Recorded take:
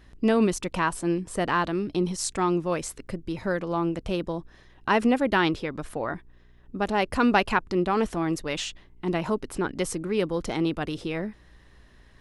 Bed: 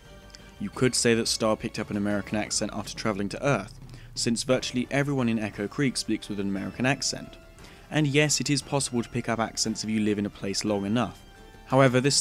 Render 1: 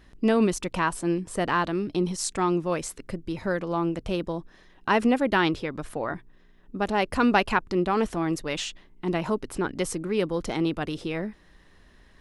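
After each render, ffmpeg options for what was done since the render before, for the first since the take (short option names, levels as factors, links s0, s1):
-af "bandreject=f=60:t=h:w=4,bandreject=f=120:t=h:w=4"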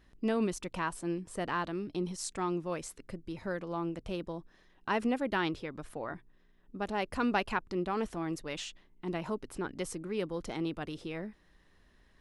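-af "volume=0.355"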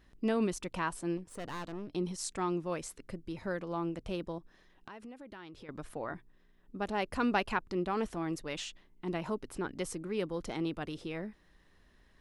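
-filter_complex "[0:a]asettb=1/sr,asplit=3[s0][s1][s2];[s0]atrim=end=1.174[s3];[s1]atrim=start=1.17:end=1.92,asetpts=PTS-STARTPTS,afade=t=in:d=0.004:c=qsin,afade=t=out:st=0.746:d=0.004:c=qsin,aeval=exprs='(tanh(70.8*val(0)+0.75)-tanh(0.75))/70.8':c=same[s4];[s2]atrim=start=1.916[s5];[s3][s4]acrossfade=d=0.004:c1=hsin:c2=qsin[s6];[s6][s5]acrossfade=d=0.004:c1=qsin:c2=hsin,asettb=1/sr,asplit=3[s7][s8][s9];[s7]atrim=end=4.384[s10];[s8]atrim=start=4.38:end=5.69,asetpts=PTS-STARTPTS,afade=t=in:d=0.004:c=qsin,afade=t=out:st=1.306:d=0.004:c=qsin,acompressor=threshold=0.00447:ratio=5:attack=3.2:release=140:knee=1:detection=peak[s11];[s9]atrim=start=5.686[s12];[s10][s11]acrossfade=d=0.004:c1=hsin:c2=qsin[s13];[s13][s12]acrossfade=d=0.004:c1=qsin:c2=hsin"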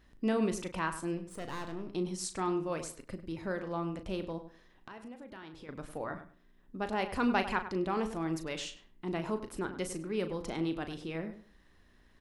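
-filter_complex "[0:a]asplit=2[s0][s1];[s1]adelay=37,volume=0.316[s2];[s0][s2]amix=inputs=2:normalize=0,asplit=2[s3][s4];[s4]adelay=100,lowpass=f=2300:p=1,volume=0.282,asplit=2[s5][s6];[s6]adelay=100,lowpass=f=2300:p=1,volume=0.21,asplit=2[s7][s8];[s8]adelay=100,lowpass=f=2300:p=1,volume=0.21[s9];[s3][s5][s7][s9]amix=inputs=4:normalize=0"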